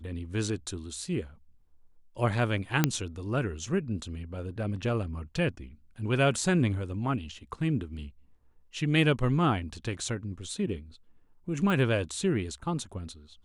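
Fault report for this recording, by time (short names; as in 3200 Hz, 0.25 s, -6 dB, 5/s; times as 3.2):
2.84 pop -7 dBFS
11.7 pop -19 dBFS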